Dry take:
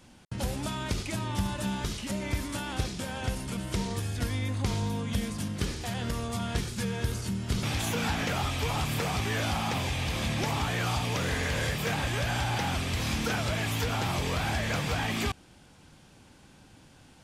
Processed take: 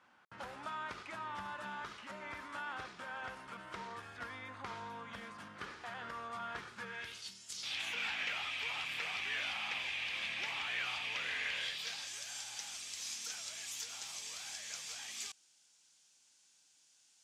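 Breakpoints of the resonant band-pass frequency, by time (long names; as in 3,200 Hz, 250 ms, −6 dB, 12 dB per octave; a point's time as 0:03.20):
resonant band-pass, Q 2.1
0:06.85 1,300 Hz
0:07.49 7,600 Hz
0:07.81 2,500 Hz
0:11.48 2,500 Hz
0:12.16 6,600 Hz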